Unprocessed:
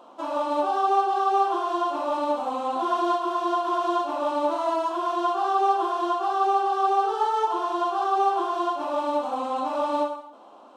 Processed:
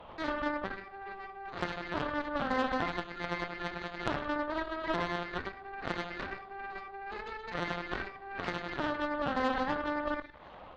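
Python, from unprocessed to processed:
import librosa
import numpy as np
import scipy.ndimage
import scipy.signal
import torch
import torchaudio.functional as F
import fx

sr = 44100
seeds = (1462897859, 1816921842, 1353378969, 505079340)

p1 = fx.law_mismatch(x, sr, coded='mu')
p2 = fx.dynamic_eq(p1, sr, hz=1400.0, q=0.83, threshold_db=-36.0, ratio=4.0, max_db=-6)
p3 = fx.volume_shaper(p2, sr, bpm=151, per_beat=1, depth_db=-4, release_ms=92.0, shape='slow start')
p4 = p2 + F.gain(torch.from_numpy(p3), 1.5).numpy()
p5 = fx.lpc_vocoder(p4, sr, seeds[0], excitation='pitch_kept', order=16)
p6 = fx.over_compress(p5, sr, threshold_db=-24.0, ratio=-1.0)
p7 = fx.high_shelf(p6, sr, hz=2900.0, db=8.5)
p8 = p7 + fx.echo_single(p7, sr, ms=495, db=-23.5, dry=0)
p9 = fx.rev_schroeder(p8, sr, rt60_s=0.67, comb_ms=30, drr_db=5.5)
p10 = fx.cheby_harmonics(p9, sr, harmonics=(3, 5, 6, 7), levels_db=(-9, -35, -23, -25), full_scale_db=-5.5)
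p11 = fx.add_hum(p10, sr, base_hz=60, snr_db=33)
y = F.gain(torch.from_numpy(p11), -7.0).numpy()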